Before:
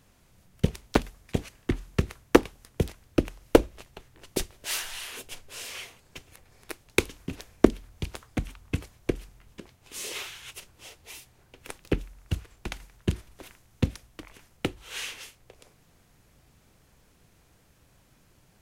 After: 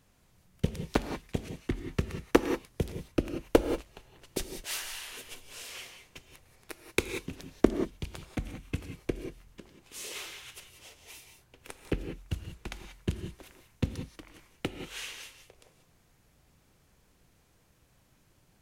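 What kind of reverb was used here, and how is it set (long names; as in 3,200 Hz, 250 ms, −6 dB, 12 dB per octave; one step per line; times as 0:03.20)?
reverb whose tail is shaped and stops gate 210 ms rising, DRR 7 dB
level −5 dB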